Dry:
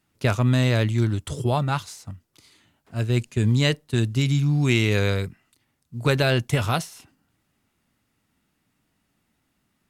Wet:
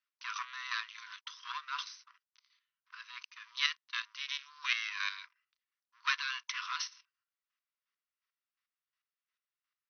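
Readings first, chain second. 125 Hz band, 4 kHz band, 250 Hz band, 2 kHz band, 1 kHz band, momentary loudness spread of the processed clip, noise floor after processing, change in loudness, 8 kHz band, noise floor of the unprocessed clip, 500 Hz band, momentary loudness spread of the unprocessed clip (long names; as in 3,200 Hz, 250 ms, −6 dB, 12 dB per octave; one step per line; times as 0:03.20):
below −40 dB, −6.5 dB, below −40 dB, −7.0 dB, −10.5 dB, 15 LU, below −85 dBFS, −14.5 dB, −10.5 dB, −73 dBFS, below −40 dB, 15 LU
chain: leveller curve on the samples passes 3
square-wave tremolo 2.8 Hz, depth 60%, duty 25%
linear-phase brick-wall band-pass 960–6,200 Hz
level −8.5 dB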